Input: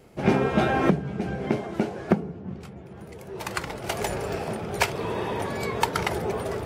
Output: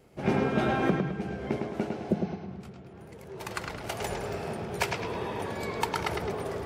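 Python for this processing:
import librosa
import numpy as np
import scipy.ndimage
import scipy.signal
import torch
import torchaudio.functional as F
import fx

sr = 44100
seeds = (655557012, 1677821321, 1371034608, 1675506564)

p1 = fx.spec_repair(x, sr, seeds[0], start_s=1.93, length_s=0.4, low_hz=660.0, high_hz=6300.0, source='before')
p2 = p1 + fx.echo_bbd(p1, sr, ms=106, stages=4096, feedback_pct=43, wet_db=-4.5, dry=0)
y = F.gain(torch.from_numpy(p2), -6.0).numpy()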